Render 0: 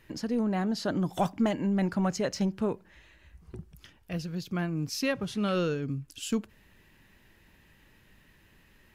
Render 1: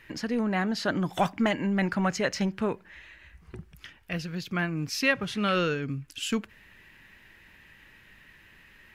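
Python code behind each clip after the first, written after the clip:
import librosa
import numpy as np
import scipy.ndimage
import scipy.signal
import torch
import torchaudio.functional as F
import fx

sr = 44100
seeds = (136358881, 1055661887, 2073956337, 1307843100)

y = fx.peak_eq(x, sr, hz=2000.0, db=10.5, octaves=1.7)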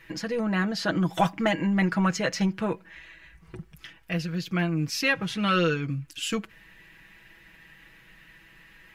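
y = x + 0.74 * np.pad(x, (int(6.1 * sr / 1000.0), 0))[:len(x)]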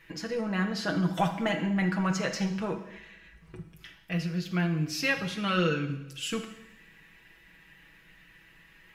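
y = fx.rev_double_slope(x, sr, seeds[0], early_s=0.83, late_s=2.7, knee_db=-25, drr_db=5.0)
y = y * librosa.db_to_amplitude(-4.5)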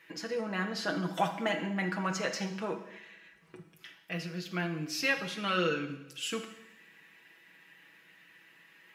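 y = scipy.signal.sosfilt(scipy.signal.butter(2, 250.0, 'highpass', fs=sr, output='sos'), x)
y = y * librosa.db_to_amplitude(-1.5)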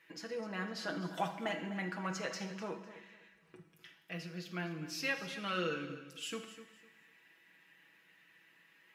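y = fx.echo_feedback(x, sr, ms=252, feedback_pct=26, wet_db=-14.0)
y = y * librosa.db_to_amplitude(-6.5)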